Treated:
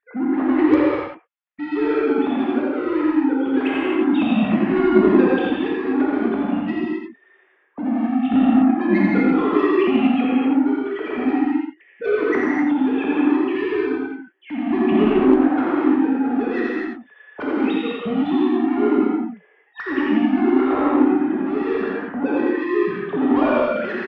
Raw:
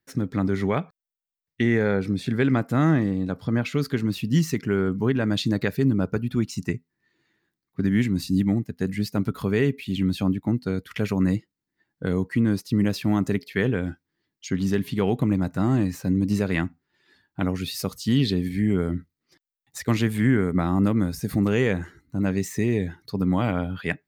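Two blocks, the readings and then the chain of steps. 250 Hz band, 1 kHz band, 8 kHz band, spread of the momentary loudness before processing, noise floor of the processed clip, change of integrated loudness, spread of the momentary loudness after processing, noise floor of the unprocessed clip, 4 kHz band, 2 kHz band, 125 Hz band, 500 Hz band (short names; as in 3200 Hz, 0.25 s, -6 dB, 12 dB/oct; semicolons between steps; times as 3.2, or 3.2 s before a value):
+6.5 dB, +10.0 dB, under -20 dB, 7 LU, -57 dBFS, +5.5 dB, 10 LU, under -85 dBFS, -1.5 dB, +4.5 dB, -11.5 dB, +7.5 dB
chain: sine-wave speech; in parallel at -1 dB: compressor, threshold -31 dBFS, peak gain reduction 17 dB; on the sum: limiter -17 dBFS, peak gain reduction 9.5 dB; soft clip -27 dBFS, distortion -10 dB; random-step tremolo 1.7 Hz; air absorption 320 m; echo 85 ms -4.5 dB; non-linear reverb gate 0.29 s flat, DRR -5.5 dB; added harmonics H 3 -25 dB, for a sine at -11 dBFS; gain +8.5 dB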